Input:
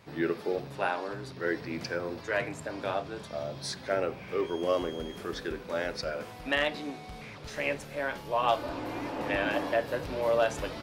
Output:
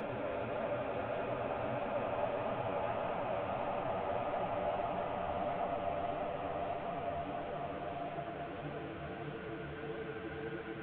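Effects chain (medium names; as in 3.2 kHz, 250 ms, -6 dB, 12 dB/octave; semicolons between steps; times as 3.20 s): one-bit delta coder 16 kbps, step -40 dBFS; Paulstretch 39×, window 0.25 s, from 2.84 s; flange 1.6 Hz, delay 3.9 ms, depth 9.6 ms, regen +39%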